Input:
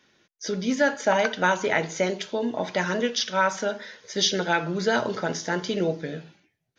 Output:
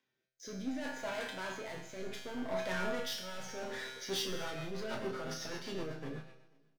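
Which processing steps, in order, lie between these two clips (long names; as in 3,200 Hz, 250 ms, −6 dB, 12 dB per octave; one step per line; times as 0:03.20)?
source passing by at 0:03.07, 12 m/s, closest 4.6 metres
high-shelf EQ 4,200 Hz −8 dB
reversed playback
downward compressor 8 to 1, threshold −41 dBFS, peak gain reduction 21 dB
reversed playback
leveller curve on the samples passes 5
upward compression, threshold −42 dBFS
tuned comb filter 130 Hz, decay 0.99 s, harmonics all, mix 90%
rotating-speaker cabinet horn 0.65 Hz, later 8 Hz, at 0:03.95
double-tracking delay 32 ms −8 dB
on a send: echo machine with several playback heads 163 ms, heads first and third, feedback 43%, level −23 dB
on the sum: multiband upward and downward expander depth 40%
level +11 dB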